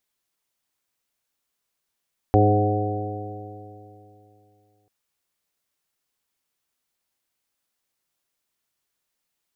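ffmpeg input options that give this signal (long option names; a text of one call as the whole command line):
ffmpeg -f lavfi -i "aevalsrc='0.158*pow(10,-3*t/2.9)*sin(2*PI*102.09*t)+0.0422*pow(10,-3*t/2.9)*sin(2*PI*204.69*t)+0.106*pow(10,-3*t/2.9)*sin(2*PI*308.33*t)+0.106*pow(10,-3*t/2.9)*sin(2*PI*413.51*t)+0.0841*pow(10,-3*t/2.9)*sin(2*PI*520.72*t)+0.0316*pow(10,-3*t/2.9)*sin(2*PI*630.45*t)+0.119*pow(10,-3*t/2.9)*sin(2*PI*743.14*t)':duration=2.54:sample_rate=44100" out.wav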